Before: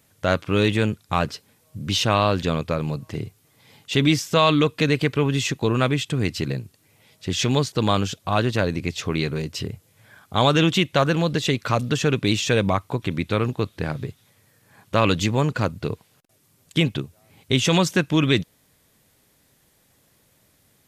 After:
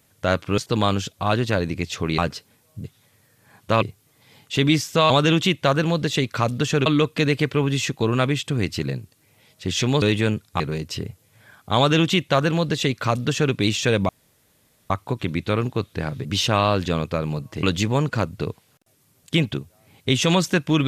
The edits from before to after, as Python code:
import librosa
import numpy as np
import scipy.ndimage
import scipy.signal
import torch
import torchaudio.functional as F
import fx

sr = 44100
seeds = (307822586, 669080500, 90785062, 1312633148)

y = fx.edit(x, sr, fx.swap(start_s=0.58, length_s=0.58, other_s=7.64, other_length_s=1.6),
    fx.swap(start_s=1.82, length_s=1.38, other_s=14.08, other_length_s=0.98),
    fx.duplicate(start_s=10.41, length_s=1.76, to_s=4.48),
    fx.insert_room_tone(at_s=12.73, length_s=0.81), tone=tone)